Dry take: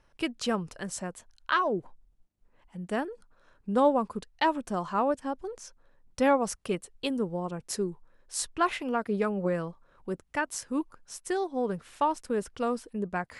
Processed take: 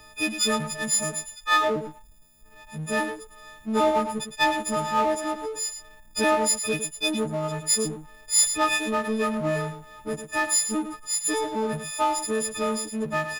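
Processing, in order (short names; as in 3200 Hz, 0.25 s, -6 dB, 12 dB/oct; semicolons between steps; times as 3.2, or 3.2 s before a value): frequency quantiser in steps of 6 st; echo 0.108 s -13.5 dB; power-law curve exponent 0.7; gain -3 dB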